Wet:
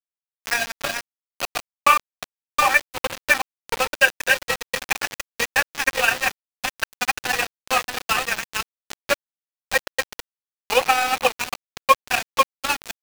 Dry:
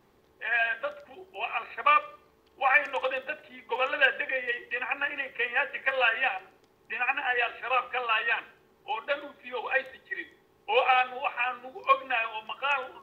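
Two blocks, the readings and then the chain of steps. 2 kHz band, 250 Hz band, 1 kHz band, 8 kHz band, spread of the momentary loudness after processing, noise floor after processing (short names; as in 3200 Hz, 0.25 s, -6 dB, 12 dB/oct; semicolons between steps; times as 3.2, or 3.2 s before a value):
+5.0 dB, +11.0 dB, +5.5 dB, n/a, 11 LU, under -85 dBFS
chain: reverse delay 0.38 s, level -2.5 dB; sample gate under -23 dBFS; transient shaper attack +6 dB, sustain -1 dB; gain +2 dB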